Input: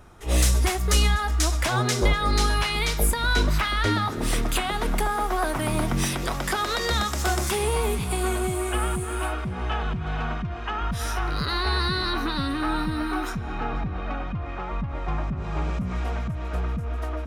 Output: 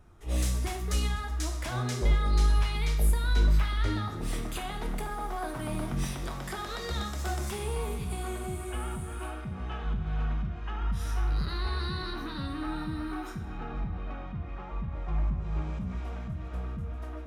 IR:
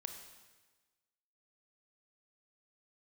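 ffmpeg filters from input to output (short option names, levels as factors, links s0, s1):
-filter_complex "[0:a]lowshelf=f=230:g=8[s0];[1:a]atrim=start_sample=2205,asetrate=83790,aresample=44100[s1];[s0][s1]afir=irnorm=-1:irlink=0,volume=0.708"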